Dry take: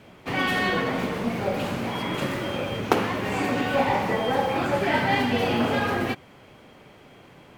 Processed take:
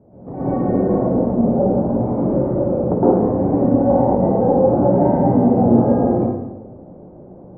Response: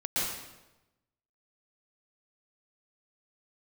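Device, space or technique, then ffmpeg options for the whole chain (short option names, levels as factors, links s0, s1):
next room: -filter_complex "[0:a]lowpass=f=690:w=0.5412,lowpass=f=690:w=1.3066[s0];[1:a]atrim=start_sample=2205[s1];[s0][s1]afir=irnorm=-1:irlink=0,volume=1.33"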